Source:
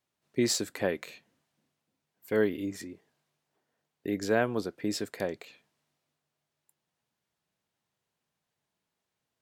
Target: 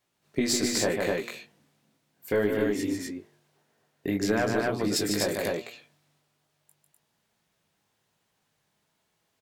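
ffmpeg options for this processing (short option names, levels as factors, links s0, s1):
-filter_complex "[0:a]flanger=delay=17.5:depth=3.2:speed=1.1,asplit=2[s0][s1];[s1]aeval=exprs='clip(val(0),-1,0.0168)':c=same,volume=0.335[s2];[s0][s2]amix=inputs=2:normalize=0,asettb=1/sr,asplit=3[s3][s4][s5];[s3]atrim=end=4.964[s6];[s4]atrim=start=4.96:end=5.37,asetpts=PTS-STARTPTS,afade=t=in:d=0.004:c=qsin,afade=t=out:st=0.406:d=0.004:c=qsin,highshelf=f=5100:g=10.5[s7];[s5]atrim=start=5.366[s8];[s6][s7]acrossfade=d=0.004:c1=hsin:c2=qsin[s9];[s9][s8]acrossfade=d=0.004:c1=qsin:c2=hsin,aecho=1:1:148.7|250.7:0.501|0.708,acompressor=threshold=0.0251:ratio=2.5,bandreject=f=117.8:t=h:w=4,bandreject=f=235.6:t=h:w=4,bandreject=f=353.4:t=h:w=4,bandreject=f=471.2:t=h:w=4,bandreject=f=589:t=h:w=4,bandreject=f=706.8:t=h:w=4,bandreject=f=824.6:t=h:w=4,bandreject=f=942.4:t=h:w=4,bandreject=f=1060.2:t=h:w=4,bandreject=f=1178:t=h:w=4,bandreject=f=1295.8:t=h:w=4,volume=2.51"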